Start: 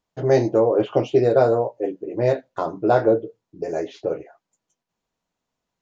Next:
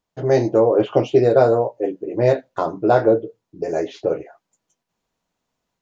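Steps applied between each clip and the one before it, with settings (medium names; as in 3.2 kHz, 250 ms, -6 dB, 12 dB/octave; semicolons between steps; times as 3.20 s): level rider gain up to 4 dB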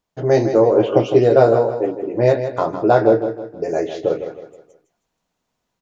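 feedback delay 159 ms, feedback 39%, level -9.5 dB; trim +1.5 dB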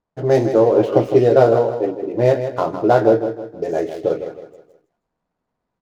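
median filter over 15 samples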